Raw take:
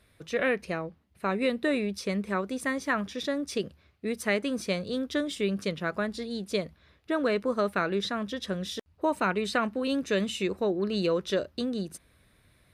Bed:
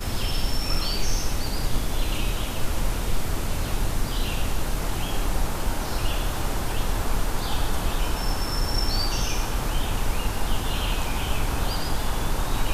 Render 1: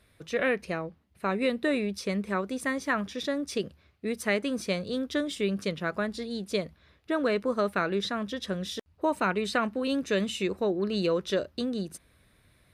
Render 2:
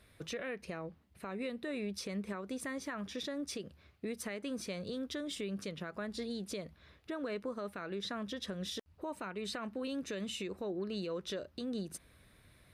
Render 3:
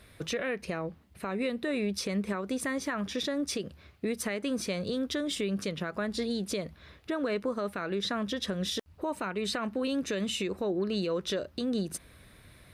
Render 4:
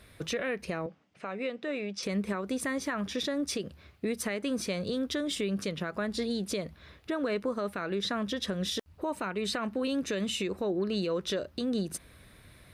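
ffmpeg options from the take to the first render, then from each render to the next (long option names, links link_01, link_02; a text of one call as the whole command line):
ffmpeg -i in.wav -af anull out.wav
ffmpeg -i in.wav -af "acompressor=threshold=-36dB:ratio=3,alimiter=level_in=6.5dB:limit=-24dB:level=0:latency=1:release=119,volume=-6.5dB" out.wav
ffmpeg -i in.wav -af "volume=8dB" out.wav
ffmpeg -i in.wav -filter_complex "[0:a]asettb=1/sr,asplit=3[link_01][link_02][link_03];[link_01]atrim=end=0.864[link_04];[link_02]atrim=start=0.86:end=2.03,asetpts=PTS-STARTPTS,afade=type=in:duration=0.004:curve=qsin,afade=type=out:start_time=1.166:duration=0.004:curve=qsin,highpass=frequency=150:width=0.5412,highpass=frequency=150:width=1.3066,equalizer=frequency=170:width_type=q:width=4:gain=-6,equalizer=frequency=230:width_type=q:width=4:gain=-8,equalizer=frequency=370:width_type=q:width=4:gain=-7,equalizer=frequency=1000:width_type=q:width=4:gain=-4,equalizer=frequency=1800:width_type=q:width=4:gain=-3,equalizer=frequency=4100:width_type=q:width=4:gain=-7,lowpass=frequency=6500:width=0.5412,lowpass=frequency=6500:width=1.3066[link_05];[link_03]atrim=start=2.026[link_06];[link_04][link_05]acrossfade=duration=0.004:curve1=hsin:curve2=qsin[link_07];[link_07][link_06]acrossfade=duration=0.004:curve1=qsin:curve2=hsin" out.wav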